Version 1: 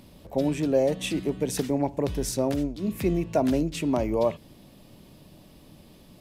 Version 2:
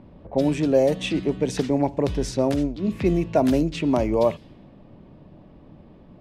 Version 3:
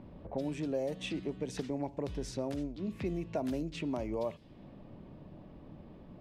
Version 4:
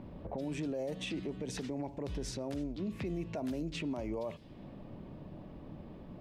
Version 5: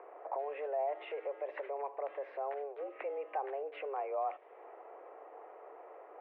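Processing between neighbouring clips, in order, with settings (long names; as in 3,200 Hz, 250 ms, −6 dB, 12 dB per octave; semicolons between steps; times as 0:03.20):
low-pass that shuts in the quiet parts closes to 1,300 Hz, open at −19 dBFS; level +4 dB
downward compressor 2 to 1, threshold −38 dBFS, peak gain reduction 13.5 dB; level −3.5 dB
brickwall limiter −32.5 dBFS, peak gain reduction 10 dB; level +3 dB
single-sideband voice off tune +140 Hz 360–2,100 Hz; level +4 dB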